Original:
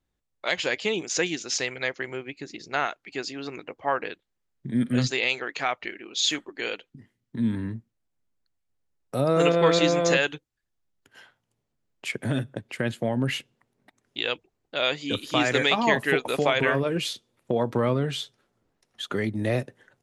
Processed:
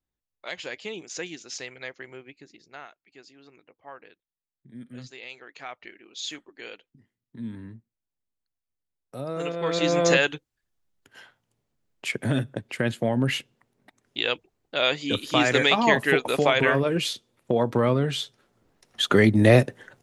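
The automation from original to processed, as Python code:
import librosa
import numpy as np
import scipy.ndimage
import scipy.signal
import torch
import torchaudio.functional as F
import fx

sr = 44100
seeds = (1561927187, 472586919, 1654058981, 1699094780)

y = fx.gain(x, sr, db=fx.line((2.28, -9.0), (2.89, -18.0), (5.1, -18.0), (5.86, -10.0), (9.57, -10.0), (10.0, 2.0), (18.15, 2.0), (19.02, 10.0)))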